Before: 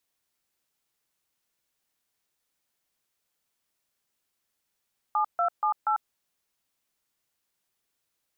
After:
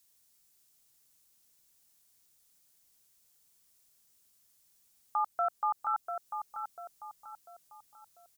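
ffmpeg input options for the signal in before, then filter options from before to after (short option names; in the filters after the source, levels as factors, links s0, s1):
-f lavfi -i "aevalsrc='0.0596*clip(min(mod(t,0.239),0.096-mod(t,0.239))/0.002,0,1)*(eq(floor(t/0.239),0)*(sin(2*PI*852*mod(t,0.239))+sin(2*PI*1209*mod(t,0.239)))+eq(floor(t/0.239),1)*(sin(2*PI*697*mod(t,0.239))+sin(2*PI*1336*mod(t,0.239)))+eq(floor(t/0.239),2)*(sin(2*PI*852*mod(t,0.239))+sin(2*PI*1209*mod(t,0.239)))+eq(floor(t/0.239),3)*(sin(2*PI*852*mod(t,0.239))+sin(2*PI*1336*mod(t,0.239))))':d=0.956:s=44100"
-filter_complex "[0:a]bass=f=250:g=7,treble=f=4000:g=13,alimiter=limit=0.075:level=0:latency=1:release=331,asplit=2[s0][s1];[s1]adelay=694,lowpass=f=1200:p=1,volume=0.562,asplit=2[s2][s3];[s3]adelay=694,lowpass=f=1200:p=1,volume=0.49,asplit=2[s4][s5];[s5]adelay=694,lowpass=f=1200:p=1,volume=0.49,asplit=2[s6][s7];[s7]adelay=694,lowpass=f=1200:p=1,volume=0.49,asplit=2[s8][s9];[s9]adelay=694,lowpass=f=1200:p=1,volume=0.49,asplit=2[s10][s11];[s11]adelay=694,lowpass=f=1200:p=1,volume=0.49[s12];[s0][s2][s4][s6][s8][s10][s12]amix=inputs=7:normalize=0"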